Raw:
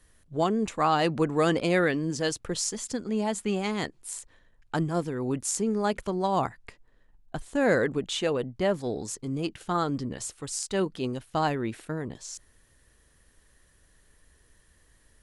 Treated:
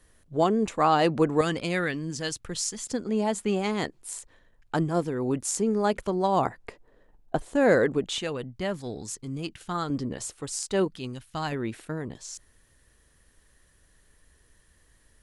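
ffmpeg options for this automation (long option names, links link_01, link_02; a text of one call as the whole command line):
ffmpeg -i in.wav -af "asetnsamples=nb_out_samples=441:pad=0,asendcmd='1.41 equalizer g -6.5;2.87 equalizer g 3;6.46 equalizer g 12;7.52 equalizer g 3.5;8.18 equalizer g -6;9.9 equalizer g 3;10.88 equalizer g -9;11.52 equalizer g -0.5',equalizer=frequency=500:width_type=o:width=2.2:gain=3.5" out.wav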